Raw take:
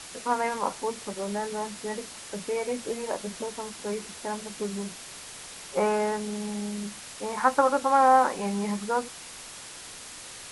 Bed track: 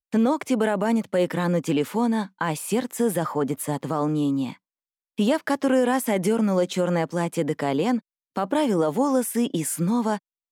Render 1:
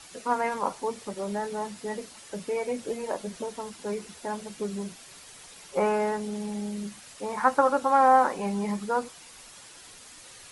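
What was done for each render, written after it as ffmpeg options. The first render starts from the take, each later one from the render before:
ffmpeg -i in.wav -af "afftdn=noise_reduction=8:noise_floor=-43" out.wav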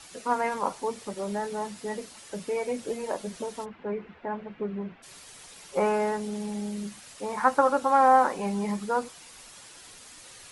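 ffmpeg -i in.wav -filter_complex "[0:a]asplit=3[link_01][link_02][link_03];[link_01]afade=type=out:start_time=3.64:duration=0.02[link_04];[link_02]lowpass=frequency=2400:width=0.5412,lowpass=frequency=2400:width=1.3066,afade=type=in:start_time=3.64:duration=0.02,afade=type=out:start_time=5.02:duration=0.02[link_05];[link_03]afade=type=in:start_time=5.02:duration=0.02[link_06];[link_04][link_05][link_06]amix=inputs=3:normalize=0" out.wav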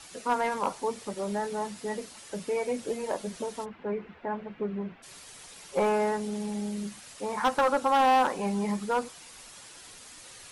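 ffmpeg -i in.wav -af "asoftclip=type=hard:threshold=-19dB" out.wav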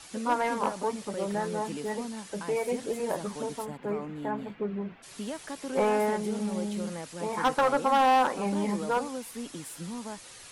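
ffmpeg -i in.wav -i bed.wav -filter_complex "[1:a]volume=-15.5dB[link_01];[0:a][link_01]amix=inputs=2:normalize=0" out.wav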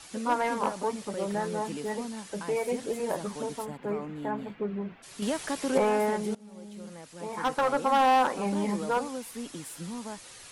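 ffmpeg -i in.wav -filter_complex "[0:a]asettb=1/sr,asplit=3[link_01][link_02][link_03];[link_01]atrim=end=5.224[link_04];[link_02]atrim=start=5.22:end=5.78,asetpts=PTS-STARTPTS,afade=type=in:duration=0.004:curve=qsin,afade=type=out:start_time=0.556:duration=0.004:curve=qsin,acontrast=69[link_05];[link_03]atrim=start=5.776[link_06];[link_04][link_05]acrossfade=duration=0.004:curve1=hsin:curve2=qsin[link_07];[link_07][link_06]acrossfade=duration=0.004:curve1=qsin:curve2=hsin,asplit=2[link_08][link_09];[link_08]atrim=end=6.35,asetpts=PTS-STARTPTS,afade=type=out:start_time=6.346:duration=0.004:curve=hsin:silence=0.0668344[link_10];[link_09]atrim=start=6.35,asetpts=PTS-STARTPTS,afade=type=in:duration=1.63:silence=0.0668344[link_11];[link_10][link_11]concat=n=2:v=0:a=1" out.wav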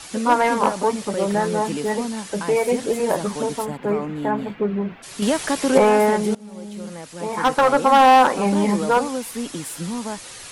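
ffmpeg -i in.wav -af "volume=10dB" out.wav

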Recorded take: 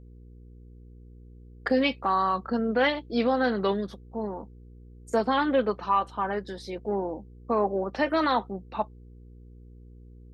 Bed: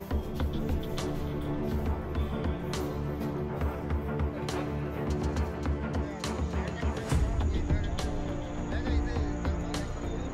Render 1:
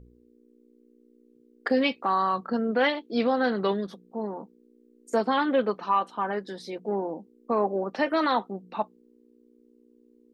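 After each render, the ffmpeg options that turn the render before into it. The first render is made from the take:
ffmpeg -i in.wav -af "bandreject=frequency=60:width_type=h:width=4,bandreject=frequency=120:width_type=h:width=4,bandreject=frequency=180:width_type=h:width=4" out.wav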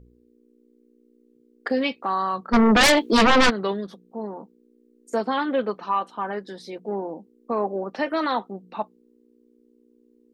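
ffmpeg -i in.wav -filter_complex "[0:a]asplit=3[link_01][link_02][link_03];[link_01]afade=type=out:start_time=2.52:duration=0.02[link_04];[link_02]aeval=exprs='0.251*sin(PI/2*4.47*val(0)/0.251)':channel_layout=same,afade=type=in:start_time=2.52:duration=0.02,afade=type=out:start_time=3.49:duration=0.02[link_05];[link_03]afade=type=in:start_time=3.49:duration=0.02[link_06];[link_04][link_05][link_06]amix=inputs=3:normalize=0" out.wav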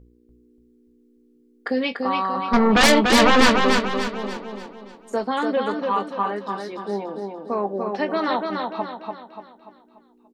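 ffmpeg -i in.wav -filter_complex "[0:a]asplit=2[link_01][link_02];[link_02]adelay=20,volume=-12dB[link_03];[link_01][link_03]amix=inputs=2:normalize=0,asplit=2[link_04][link_05];[link_05]aecho=0:1:291|582|873|1164|1455|1746:0.631|0.278|0.122|0.0537|0.0236|0.0104[link_06];[link_04][link_06]amix=inputs=2:normalize=0" out.wav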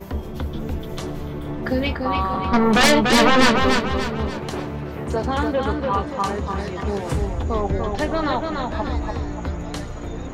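ffmpeg -i in.wav -i bed.wav -filter_complex "[1:a]volume=3.5dB[link_01];[0:a][link_01]amix=inputs=2:normalize=0" out.wav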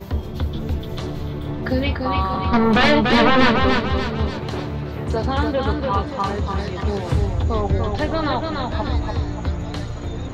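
ffmpeg -i in.wav -filter_complex "[0:a]acrossover=split=3200[link_01][link_02];[link_02]acompressor=threshold=-41dB:ratio=4:attack=1:release=60[link_03];[link_01][link_03]amix=inputs=2:normalize=0,equalizer=frequency=100:width_type=o:width=0.67:gain=10,equalizer=frequency=4000:width_type=o:width=0.67:gain=7,equalizer=frequency=10000:width_type=o:width=0.67:gain=-4" out.wav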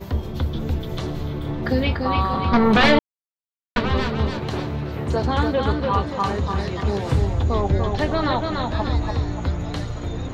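ffmpeg -i in.wav -filter_complex "[0:a]asplit=3[link_01][link_02][link_03];[link_01]atrim=end=2.99,asetpts=PTS-STARTPTS,afade=type=out:start_time=2.986:duration=0.004:curve=hsin[link_04];[link_02]atrim=start=2.99:end=3.76,asetpts=PTS-STARTPTS,volume=0[link_05];[link_03]atrim=start=3.76,asetpts=PTS-STARTPTS,afade=type=in:duration=0.004:curve=hsin[link_06];[link_04][link_05][link_06]concat=n=3:v=0:a=1" out.wav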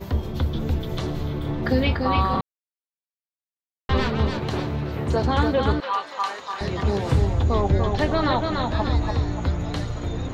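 ffmpeg -i in.wav -filter_complex "[0:a]asettb=1/sr,asplit=3[link_01][link_02][link_03];[link_01]atrim=end=5.804[link_04];[link_02]atrim=start=5.8:end=6.61,asetpts=PTS-STARTPTS,afade=type=in:duration=0.004:curve=qsin,afade=type=out:start_time=0.806:duration=0.004:curve=qsin,highpass=910[link_05];[link_03]atrim=start=6.606[link_06];[link_04][link_05]acrossfade=duration=0.004:curve1=hsin:curve2=qsin[link_07];[link_07][link_06]acrossfade=duration=0.004:curve1=qsin:curve2=hsin,asplit=3[link_08][link_09][link_10];[link_08]atrim=end=2.41,asetpts=PTS-STARTPTS,afade=type=out:start_time=2.406:duration=0.004:curve=hsin[link_11];[link_09]atrim=start=2.41:end=3.89,asetpts=PTS-STARTPTS,volume=0[link_12];[link_10]atrim=start=3.89,asetpts=PTS-STARTPTS,afade=type=in:duration=0.004:curve=hsin[link_13];[link_11][link_12][link_13]concat=n=3:v=0:a=1" out.wav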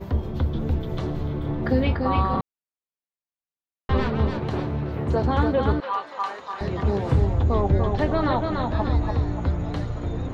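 ffmpeg -i in.wav -af "highshelf=frequency=2600:gain=-11.5" out.wav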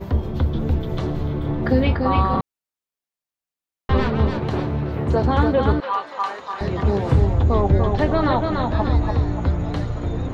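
ffmpeg -i in.wav -af "volume=3.5dB" out.wav

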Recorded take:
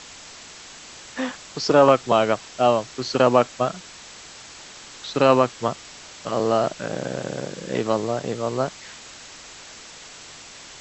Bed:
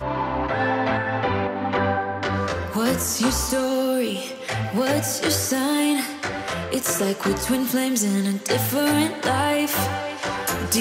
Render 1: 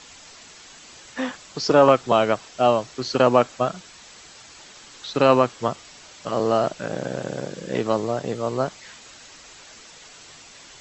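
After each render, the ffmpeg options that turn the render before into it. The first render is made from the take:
ffmpeg -i in.wav -af "afftdn=noise_reduction=6:noise_floor=-43" out.wav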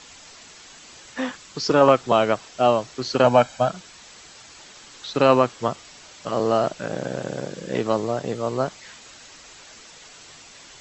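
ffmpeg -i in.wav -filter_complex "[0:a]asettb=1/sr,asplit=3[link_01][link_02][link_03];[link_01]atrim=end=1.304[link_04];[link_02]atrim=start=1.3:end=1.81,asetpts=PTS-STARTPTS,afade=type=in:duration=0.004:curve=qsin,afade=type=out:start_time=0.506:duration=0.004:curve=qsin,equalizer=frequency=670:width=2.5:gain=-6.5[link_05];[link_03]atrim=start=1.806[link_06];[link_04][link_05]acrossfade=duration=0.004:curve1=hsin:curve2=qsin[link_07];[link_07][link_06]acrossfade=duration=0.004:curve1=qsin:curve2=hsin,asettb=1/sr,asplit=3[link_08][link_09][link_10];[link_08]atrim=end=3.244[link_11];[link_09]atrim=start=3.24:end=3.7,asetpts=PTS-STARTPTS,afade=type=in:duration=0.004:curve=qsin,afade=type=out:start_time=0.456:duration=0.004:curve=qsin,aecho=1:1:1.3:0.65,atrim=end_sample=20286[link_12];[link_10]atrim=start=3.696[link_13];[link_11][link_12]acrossfade=duration=0.004:curve1=hsin:curve2=qsin[link_14];[link_14][link_13]acrossfade=duration=0.004:curve1=qsin:curve2=hsin" out.wav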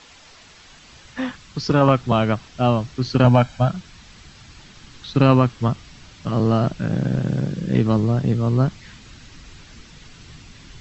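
ffmpeg -i in.wav -af "lowpass=5100,asubboost=boost=10.5:cutoff=180" out.wav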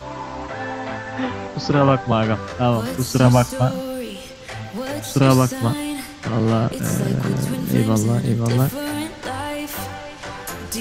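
ffmpeg -i in.wav -i bed.wav -filter_complex "[1:a]volume=-6dB[link_01];[0:a][link_01]amix=inputs=2:normalize=0" out.wav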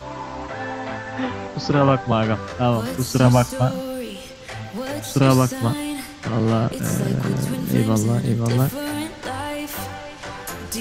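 ffmpeg -i in.wav -af "volume=-1dB,alimiter=limit=-3dB:level=0:latency=1" out.wav

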